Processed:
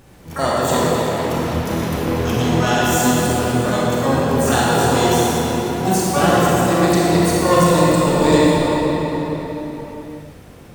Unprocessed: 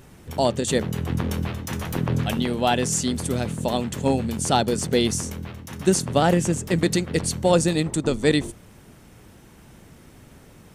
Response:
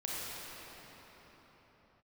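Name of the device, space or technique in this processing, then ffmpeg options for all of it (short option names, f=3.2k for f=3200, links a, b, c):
shimmer-style reverb: -filter_complex "[0:a]asettb=1/sr,asplit=3[a][b][c];[a]atrim=end=0.934[d];[b]atrim=start=0.93:end=1.38,asetpts=PTS-STARTPTS,afade=t=in:d=0.004:c=qsin,afade=t=out:st=0.446:d=0.004:c=qsin,highpass=220[e];[c]atrim=start=1.376[f];[d][e]acrossfade=d=0.004:c1=hsin:c2=qsin[g];[g][f]acrossfade=d=0.004:c1=qsin:c2=hsin,asplit=2[h][i];[i]asetrate=88200,aresample=44100,atempo=0.5,volume=-4dB[j];[h][j]amix=inputs=2:normalize=0[k];[1:a]atrim=start_sample=2205[l];[k][l]afir=irnorm=-1:irlink=0,volume=1dB"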